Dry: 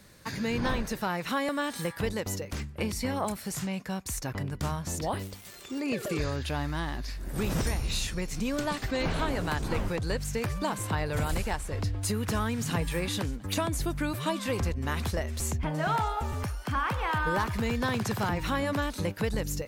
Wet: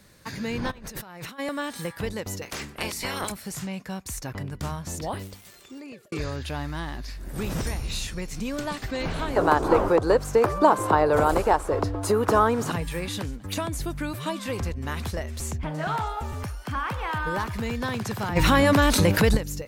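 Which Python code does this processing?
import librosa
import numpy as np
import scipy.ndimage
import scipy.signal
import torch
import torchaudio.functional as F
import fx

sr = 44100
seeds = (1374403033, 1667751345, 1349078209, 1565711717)

y = fx.over_compress(x, sr, threshold_db=-42.0, ratio=-1.0, at=(0.7, 1.38), fade=0.02)
y = fx.spec_clip(y, sr, under_db=22, at=(2.41, 3.3), fade=0.02)
y = fx.band_shelf(y, sr, hz=640.0, db=14.5, octaves=2.6, at=(9.36, 12.72))
y = fx.doppler_dist(y, sr, depth_ms=0.15, at=(15.4, 16.07))
y = fx.env_flatten(y, sr, amount_pct=70, at=(18.35, 19.36), fade=0.02)
y = fx.edit(y, sr, fx.fade_out_span(start_s=5.32, length_s=0.8), tone=tone)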